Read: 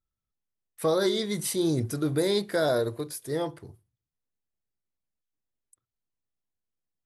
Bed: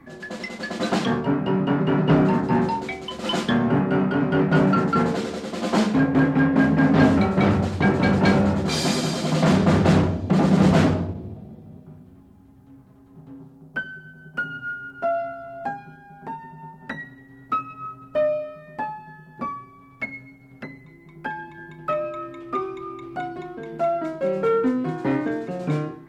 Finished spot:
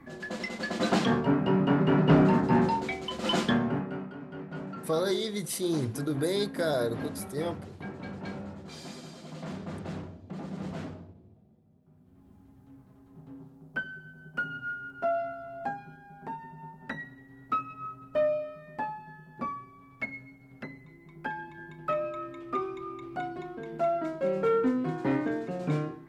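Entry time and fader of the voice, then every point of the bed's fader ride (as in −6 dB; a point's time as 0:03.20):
4.05 s, −3.5 dB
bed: 0:03.46 −3 dB
0:04.17 −21 dB
0:11.78 −21 dB
0:12.31 −5 dB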